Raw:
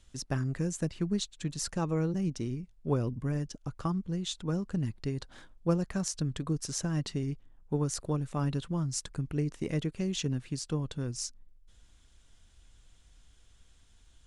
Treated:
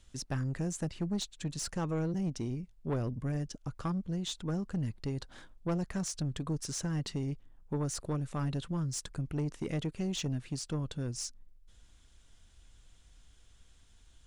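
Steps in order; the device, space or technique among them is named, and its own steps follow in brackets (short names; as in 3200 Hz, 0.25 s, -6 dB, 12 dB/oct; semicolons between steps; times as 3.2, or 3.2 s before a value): saturation between pre-emphasis and de-emphasis (high shelf 6900 Hz +8.5 dB; soft clip -27 dBFS, distortion -13 dB; high shelf 6900 Hz -8.5 dB)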